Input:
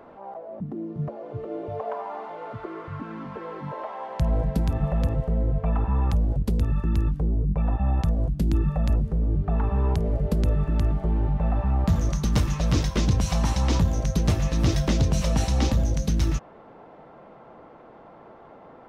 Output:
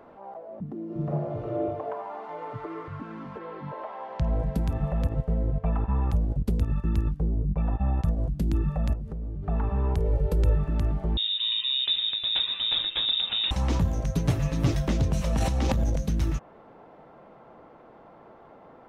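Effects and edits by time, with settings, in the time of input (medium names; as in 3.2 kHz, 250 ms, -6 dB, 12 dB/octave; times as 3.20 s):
0.85–1.64 s: reverb throw, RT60 0.9 s, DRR -5 dB
2.28–2.88 s: comb 6.7 ms, depth 79%
3.38–4.38 s: low-pass 4.4 kHz -> 6.5 kHz 24 dB/octave
5.04–8.18 s: transient shaper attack +4 dB, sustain -6 dB
8.93–9.43 s: compression, threshold -27 dBFS
9.97–10.58 s: comb 2.2 ms, depth 70%
11.17–13.51 s: frequency inversion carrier 3.7 kHz
14.15–14.72 s: comb 7.1 ms
15.33–15.96 s: transient shaper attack -6 dB, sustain +10 dB
whole clip: dynamic bell 5 kHz, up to -6 dB, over -49 dBFS, Q 1.1; trim -3 dB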